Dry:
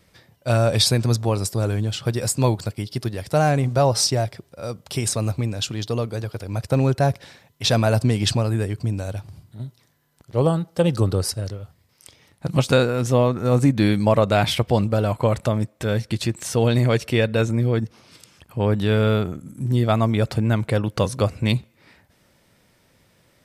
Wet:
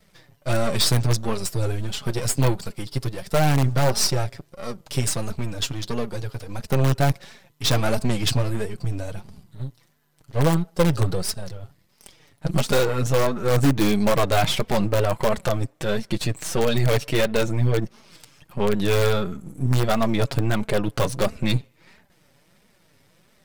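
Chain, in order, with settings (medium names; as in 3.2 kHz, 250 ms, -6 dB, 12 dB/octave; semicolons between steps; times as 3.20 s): partial rectifier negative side -12 dB; flange 1.5 Hz, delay 4.4 ms, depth 3.1 ms, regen +5%; in parallel at -8 dB: integer overflow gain 15.5 dB; on the sum: trim +3 dB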